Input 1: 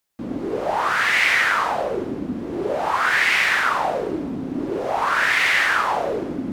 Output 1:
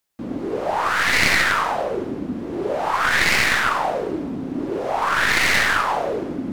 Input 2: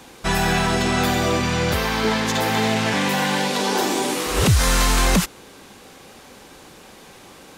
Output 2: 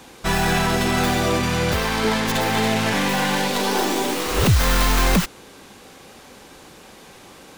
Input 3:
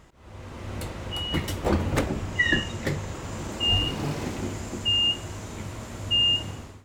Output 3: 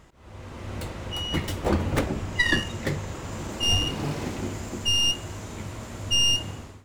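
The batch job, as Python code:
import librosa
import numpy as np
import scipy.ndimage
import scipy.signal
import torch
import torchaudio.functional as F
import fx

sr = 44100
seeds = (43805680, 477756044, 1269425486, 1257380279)

y = fx.tracing_dist(x, sr, depth_ms=0.13)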